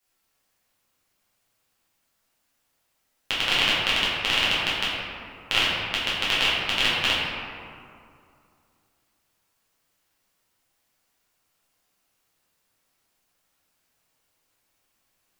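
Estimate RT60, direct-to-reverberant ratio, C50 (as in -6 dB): 2.4 s, -9.5 dB, -1.5 dB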